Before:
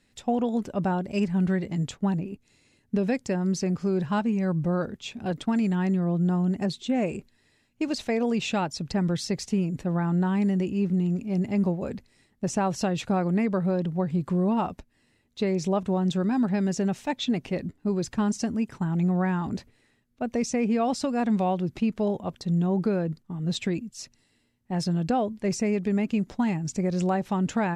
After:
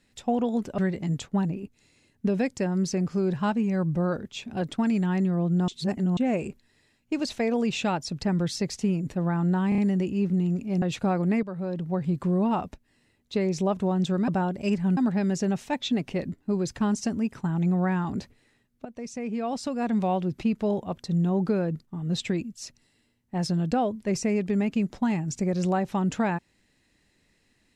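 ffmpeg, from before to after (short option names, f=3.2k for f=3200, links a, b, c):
-filter_complex "[0:a]asplit=12[a][b][c][d][e][f][g][h][i][j][k][l];[a]atrim=end=0.782[m];[b]atrim=start=1.468:end=6.372[n];[c]atrim=start=6.368:end=6.862,asetpts=PTS-STARTPTS,areverse[o];[d]atrim=start=6.858:end=10.412[p];[e]atrim=start=10.378:end=10.412[q];[f]atrim=start=10.378:end=10.412[r];[g]atrim=start=10.378:end=11.422[s];[h]atrim=start=12.878:end=13.49,asetpts=PTS-STARTPTS,afade=t=out:st=0.608:d=0.004:c=hsin:silence=0.237137[t];[i]atrim=start=13.49:end=16.342,asetpts=PTS-STARTPTS,afade=t=in:d=0.62:silence=0.237137[u];[j]atrim=start=0.778:end=1.472[v];[k]atrim=start=16.338:end=20.22,asetpts=PTS-STARTPTS,afade=t=out:st=3.878:d=0.004:c=hsin:silence=0.188365[w];[l]atrim=start=20.22,asetpts=PTS-STARTPTS,afade=t=in:d=1.32:silence=0.188365[x];[m][n]acrossfade=d=0.004:c1=hsin:c2=hsin[y];[y][o]acrossfade=d=0.004:c1=hsin:c2=hsin[z];[z][p]acrossfade=d=0.004:c1=hsin:c2=hsin[aa];[aa][q]acrossfade=d=0.004:c1=hsin:c2=hsin[ab];[ab][r]acrossfade=d=0.004:c1=hsin:c2=hsin[ac];[ac][s]acrossfade=d=0.004:c1=hsin:c2=hsin[ad];[t][u]concat=n=2:v=0:a=1[ae];[ad][ae]acrossfade=d=0.004:c1=hsin:c2=hsin[af];[af][v]acrossfade=d=0.004:c1=hsin:c2=hsin[ag];[w][x]concat=n=2:v=0:a=1[ah];[ag][ah]acrossfade=d=0.004:c1=hsin:c2=hsin"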